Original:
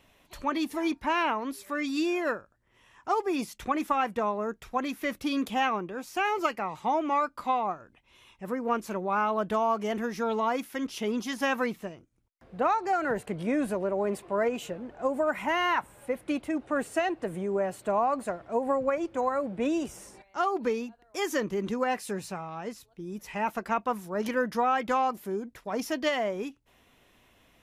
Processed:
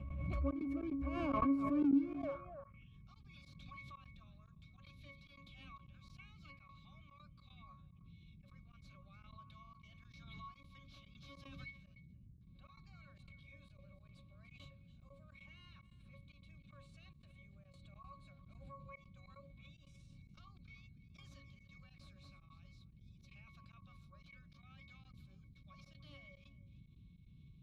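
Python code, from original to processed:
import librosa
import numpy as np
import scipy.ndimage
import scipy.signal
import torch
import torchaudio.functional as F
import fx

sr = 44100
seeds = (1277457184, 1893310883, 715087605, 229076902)

p1 = fx.over_compress(x, sr, threshold_db=-30.0, ratio=-0.5)
p2 = x + F.gain(torch.from_numpy(p1), -2.0).numpy()
p3 = fx.filter_sweep_highpass(p2, sr, from_hz=65.0, to_hz=3900.0, start_s=1.21, end_s=2.98, q=7.7)
p4 = p3 + 10.0 ** (-18.0 / 20.0) * np.pad(p3, (int(296 * sr / 1000.0), 0))[:len(p3)]
p5 = 10.0 ** (-28.5 / 20.0) * np.tanh(p4 / 10.0 ** (-28.5 / 20.0))
p6 = fx.octave_resonator(p5, sr, note='C#', decay_s=0.3)
p7 = fx.dmg_noise_band(p6, sr, seeds[0], low_hz=33.0, high_hz=180.0, level_db=-65.0)
p8 = fx.step_gate(p7, sr, bpm=148, pattern='.xxxx.xx.xxxx', floor_db=-24.0, edge_ms=4.5)
p9 = fx.pre_swell(p8, sr, db_per_s=27.0)
y = F.gain(torch.from_numpy(p9), 4.5).numpy()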